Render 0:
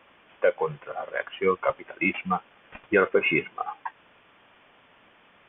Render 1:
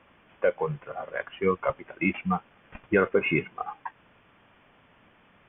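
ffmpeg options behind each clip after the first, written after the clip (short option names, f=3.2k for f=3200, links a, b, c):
-af "bass=f=250:g=9,treble=f=4k:g=-10,volume=-2.5dB"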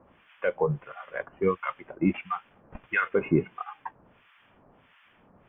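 -filter_complex "[0:a]acrossover=split=1100[a][b];[a]aeval=exprs='val(0)*(1-1/2+1/2*cos(2*PI*1.5*n/s))':c=same[c];[b]aeval=exprs='val(0)*(1-1/2-1/2*cos(2*PI*1.5*n/s))':c=same[d];[c][d]amix=inputs=2:normalize=0,volume=4.5dB"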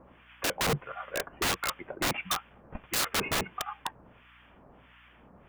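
-af "aeval=exprs='(mod(17.8*val(0)+1,2)-1)/17.8':c=same,aeval=exprs='val(0)+0.000562*(sin(2*PI*60*n/s)+sin(2*PI*2*60*n/s)/2+sin(2*PI*3*60*n/s)/3+sin(2*PI*4*60*n/s)/4+sin(2*PI*5*60*n/s)/5)':c=same,volume=2.5dB"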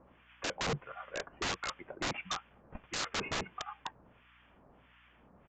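-af "aresample=16000,aresample=44100,volume=-6dB"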